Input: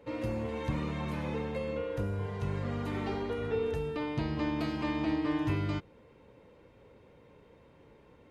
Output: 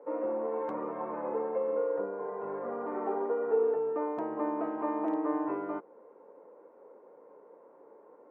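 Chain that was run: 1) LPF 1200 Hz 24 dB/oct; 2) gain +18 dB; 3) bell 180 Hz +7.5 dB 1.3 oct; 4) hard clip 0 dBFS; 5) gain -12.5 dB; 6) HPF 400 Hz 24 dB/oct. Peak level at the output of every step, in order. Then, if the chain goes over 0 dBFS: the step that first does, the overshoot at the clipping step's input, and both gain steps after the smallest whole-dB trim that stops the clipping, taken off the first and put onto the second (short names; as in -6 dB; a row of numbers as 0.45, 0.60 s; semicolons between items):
-19.5, -1.5, +3.0, 0.0, -12.5, -17.5 dBFS; step 3, 3.0 dB; step 2 +15 dB, step 5 -9.5 dB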